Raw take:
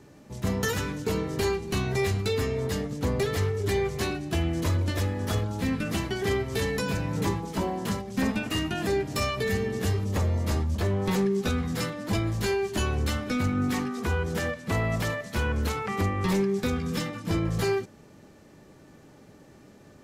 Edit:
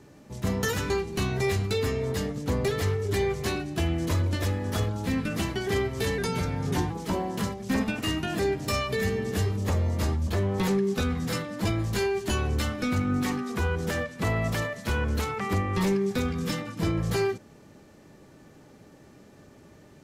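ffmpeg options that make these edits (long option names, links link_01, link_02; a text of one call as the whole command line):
ffmpeg -i in.wav -filter_complex "[0:a]asplit=4[link_01][link_02][link_03][link_04];[link_01]atrim=end=0.902[link_05];[link_02]atrim=start=1.448:end=6.734[link_06];[link_03]atrim=start=6.73:end=7.38,asetpts=PTS-STARTPTS,asetrate=39690,aresample=44100[link_07];[link_04]atrim=start=7.376[link_08];[link_05][link_06]acrossfade=duration=0.004:curve1=hsin:curve2=hsin[link_09];[link_09][link_07]acrossfade=duration=0.004:curve1=hsin:curve2=hsin[link_10];[link_10][link_08]acrossfade=duration=0.004:curve1=hsin:curve2=hsin" out.wav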